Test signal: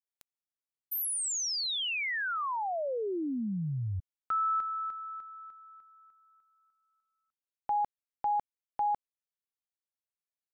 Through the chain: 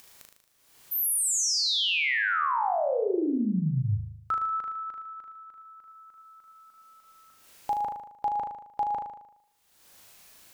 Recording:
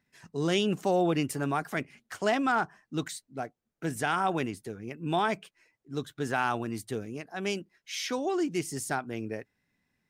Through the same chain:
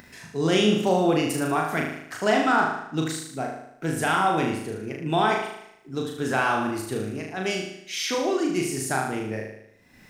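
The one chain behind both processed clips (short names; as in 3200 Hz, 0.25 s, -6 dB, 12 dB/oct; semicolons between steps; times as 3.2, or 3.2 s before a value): upward compressor 4:1, threshold -45 dBFS; flutter echo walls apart 6.5 m, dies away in 0.76 s; gain +3.5 dB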